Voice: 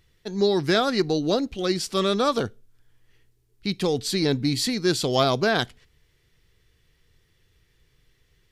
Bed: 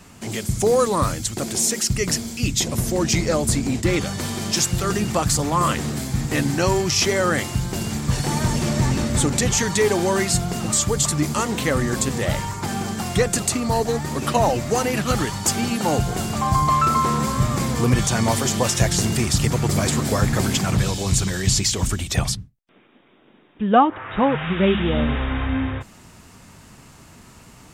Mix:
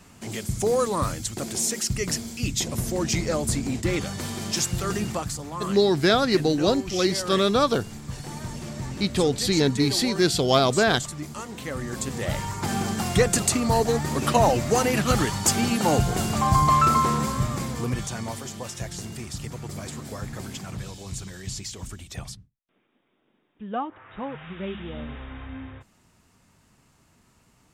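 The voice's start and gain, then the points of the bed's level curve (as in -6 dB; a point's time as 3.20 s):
5.35 s, +1.5 dB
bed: 5.07 s -5 dB
5.38 s -13.5 dB
11.52 s -13.5 dB
12.74 s -0.5 dB
16.89 s -0.5 dB
18.52 s -15 dB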